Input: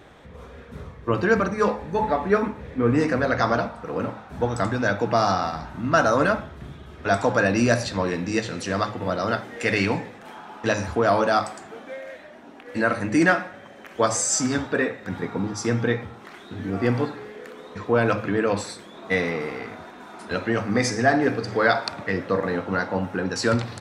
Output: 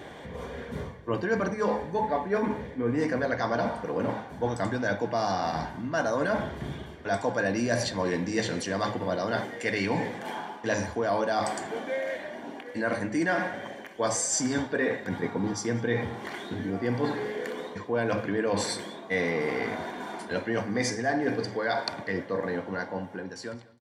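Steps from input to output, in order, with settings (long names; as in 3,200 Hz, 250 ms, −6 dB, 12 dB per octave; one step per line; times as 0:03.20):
fade-out on the ending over 3.97 s
reversed playback
downward compressor 4 to 1, threshold −32 dBFS, peak gain reduction 16 dB
reversed playback
notch comb filter 1,300 Hz
slap from a distant wall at 33 metres, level −21 dB
level +6.5 dB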